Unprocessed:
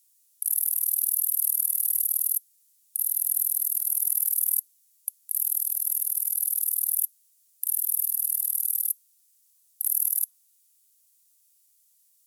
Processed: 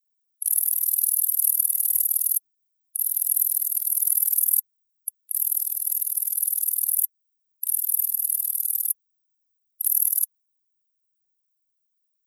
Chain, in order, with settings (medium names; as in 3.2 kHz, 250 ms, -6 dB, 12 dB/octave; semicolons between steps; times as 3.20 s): expander on every frequency bin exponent 2; trim +8.5 dB